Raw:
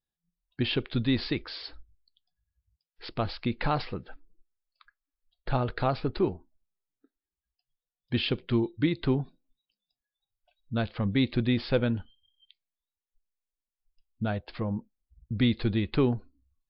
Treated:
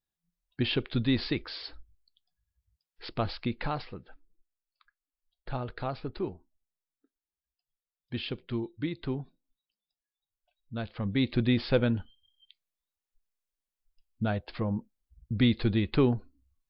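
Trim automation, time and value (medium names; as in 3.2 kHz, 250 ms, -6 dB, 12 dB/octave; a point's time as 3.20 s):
3.36 s -0.5 dB
3.85 s -7 dB
10.74 s -7 dB
11.43 s +0.5 dB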